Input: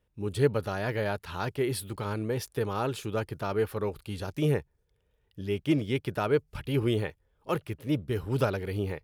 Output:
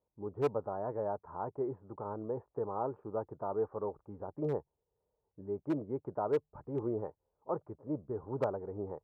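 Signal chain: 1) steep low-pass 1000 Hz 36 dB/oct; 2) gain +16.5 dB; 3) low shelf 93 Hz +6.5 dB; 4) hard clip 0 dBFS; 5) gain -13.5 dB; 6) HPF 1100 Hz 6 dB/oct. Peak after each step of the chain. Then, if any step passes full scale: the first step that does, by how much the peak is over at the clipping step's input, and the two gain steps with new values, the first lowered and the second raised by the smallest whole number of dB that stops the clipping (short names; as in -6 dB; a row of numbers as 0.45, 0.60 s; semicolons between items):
-13.5, +3.0, +4.0, 0.0, -13.5, -18.5 dBFS; step 2, 4.0 dB; step 2 +12.5 dB, step 5 -9.5 dB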